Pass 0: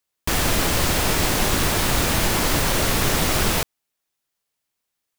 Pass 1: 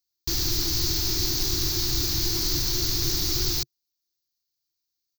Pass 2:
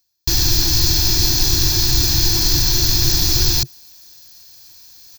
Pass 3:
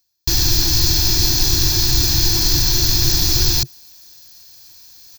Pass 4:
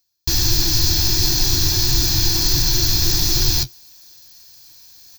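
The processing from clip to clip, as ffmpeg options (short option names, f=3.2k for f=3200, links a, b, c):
-af "firequalizer=gain_entry='entry(130,0);entry(210,-18);entry(340,4);entry(510,-27);entry(730,-15);entry(3000,-9);entry(4400,9);entry(6300,6);entry(9200,-23);entry(14000,5)':delay=0.05:min_phase=1,volume=-5dB"
-af "aecho=1:1:1.2:0.41,areverse,acompressor=mode=upward:threshold=-28dB:ratio=2.5,areverse,volume=8.5dB"
-af anull
-af "flanger=delay=5.3:depth=8.1:regen=-42:speed=1.5:shape=triangular,volume=2.5dB"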